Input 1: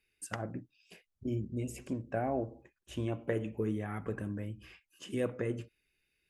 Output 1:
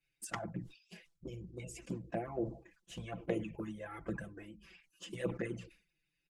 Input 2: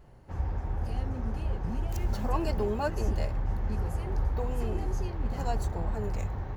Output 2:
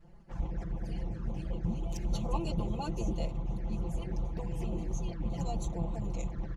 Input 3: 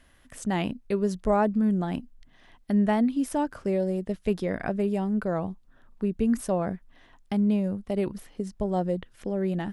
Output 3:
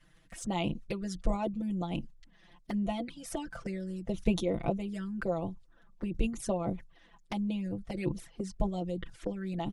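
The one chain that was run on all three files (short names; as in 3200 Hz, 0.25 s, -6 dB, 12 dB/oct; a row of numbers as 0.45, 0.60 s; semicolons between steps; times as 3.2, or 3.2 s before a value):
LPF 8300 Hz 12 dB/oct; harmonic-percussive split harmonic -16 dB; tone controls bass +5 dB, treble +3 dB; comb 5.9 ms, depth 83%; envelope flanger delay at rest 7.3 ms, full sweep at -30 dBFS; sustainer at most 140 dB/s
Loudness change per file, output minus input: -5.0, -4.0, -7.5 LU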